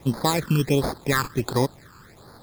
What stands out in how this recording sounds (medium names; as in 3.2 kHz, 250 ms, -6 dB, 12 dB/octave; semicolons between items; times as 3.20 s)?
aliases and images of a low sample rate 2.9 kHz, jitter 0%; phasing stages 12, 1.4 Hz, lowest notch 630–2700 Hz